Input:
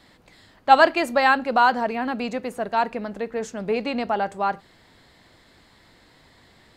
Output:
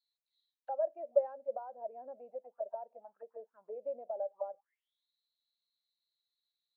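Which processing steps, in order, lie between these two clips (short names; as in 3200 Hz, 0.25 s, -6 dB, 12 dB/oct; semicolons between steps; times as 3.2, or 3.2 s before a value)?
compressor 2.5:1, threshold -23 dBFS, peak gain reduction 10.5 dB; auto-wah 580–4400 Hz, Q 8.1, down, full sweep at -24.5 dBFS; spectral expander 1.5:1; gain +1 dB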